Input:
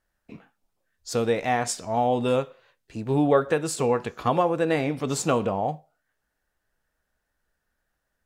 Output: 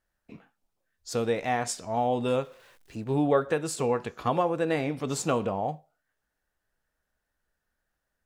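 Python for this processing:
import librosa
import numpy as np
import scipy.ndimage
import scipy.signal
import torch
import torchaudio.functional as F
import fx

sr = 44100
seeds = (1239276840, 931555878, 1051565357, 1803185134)

y = fx.zero_step(x, sr, step_db=-50.5, at=(2.42, 3.04))
y = y * librosa.db_to_amplitude(-3.5)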